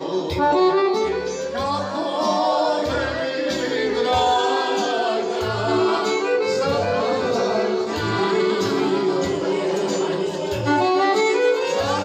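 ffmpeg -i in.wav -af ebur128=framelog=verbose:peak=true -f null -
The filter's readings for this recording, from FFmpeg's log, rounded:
Integrated loudness:
  I:         -20.7 LUFS
  Threshold: -30.7 LUFS
Loudness range:
  LRA:         1.2 LU
  Threshold: -40.9 LUFS
  LRA low:   -21.6 LUFS
  LRA high:  -20.4 LUFS
True peak:
  Peak:       -9.6 dBFS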